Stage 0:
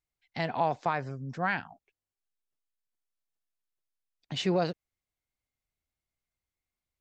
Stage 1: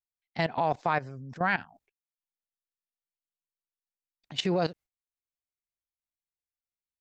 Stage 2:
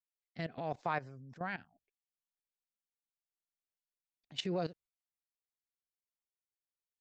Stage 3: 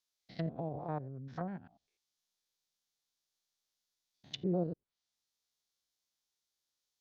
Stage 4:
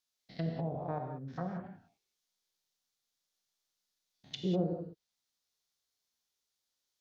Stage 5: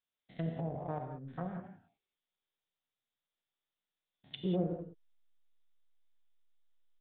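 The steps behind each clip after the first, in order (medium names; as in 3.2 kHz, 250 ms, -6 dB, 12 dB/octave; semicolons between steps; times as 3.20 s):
gate with hold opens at -53 dBFS; level held to a coarse grid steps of 16 dB; trim +6.5 dB
rotary cabinet horn 0.75 Hz, later 6.7 Hz, at 3.70 s; trim -7.5 dB
spectrogram pixelated in time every 100 ms; high-order bell 4.7 kHz +9.5 dB 1.2 oct; low-pass that closes with the level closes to 490 Hz, closed at -39 dBFS; trim +6 dB
gated-style reverb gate 220 ms flat, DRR 3 dB
in parallel at -11 dB: hysteresis with a dead band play -32.5 dBFS; on the sum: resampled via 8 kHz; trim -3 dB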